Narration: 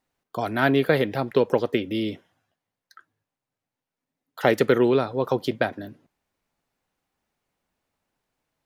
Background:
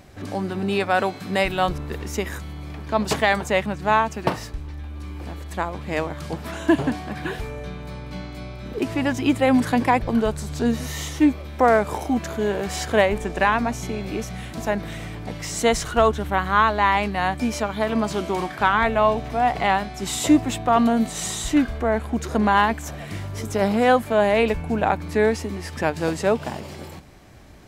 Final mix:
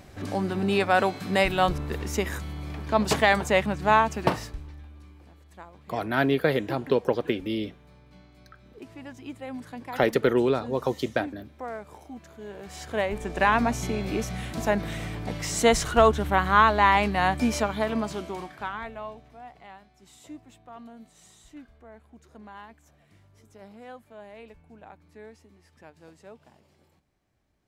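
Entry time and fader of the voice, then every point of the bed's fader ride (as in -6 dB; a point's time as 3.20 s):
5.55 s, -3.0 dB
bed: 4.31 s -1 dB
5.30 s -19.5 dB
12.34 s -19.5 dB
13.58 s -0.5 dB
17.60 s -0.5 dB
19.61 s -27 dB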